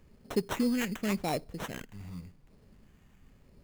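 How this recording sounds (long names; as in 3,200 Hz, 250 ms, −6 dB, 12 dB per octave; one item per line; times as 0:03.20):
phaser sweep stages 2, 0.89 Hz, lowest notch 710–1,500 Hz
aliases and images of a low sample rate 4,700 Hz, jitter 0%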